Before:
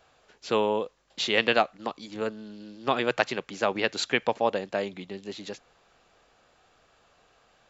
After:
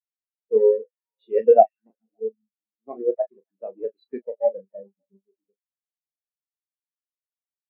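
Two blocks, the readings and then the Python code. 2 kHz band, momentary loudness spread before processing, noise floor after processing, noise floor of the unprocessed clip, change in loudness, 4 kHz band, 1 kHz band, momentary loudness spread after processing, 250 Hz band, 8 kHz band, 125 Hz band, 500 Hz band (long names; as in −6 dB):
below −25 dB, 15 LU, below −85 dBFS, −64 dBFS, +6.0 dB, below −35 dB, +3.0 dB, 21 LU, −6.5 dB, can't be measured, below −15 dB, +7.5 dB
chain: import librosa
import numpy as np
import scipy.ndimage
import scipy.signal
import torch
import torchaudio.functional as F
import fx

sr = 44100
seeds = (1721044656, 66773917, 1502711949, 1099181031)

y = fx.halfwave_hold(x, sr)
y = fx.doubler(y, sr, ms=36.0, db=-5.0)
y = fx.echo_stepped(y, sr, ms=142, hz=3100.0, octaves=-0.7, feedback_pct=70, wet_db=-7.5)
y = fx.spectral_expand(y, sr, expansion=4.0)
y = F.gain(torch.from_numpy(y), 2.0).numpy()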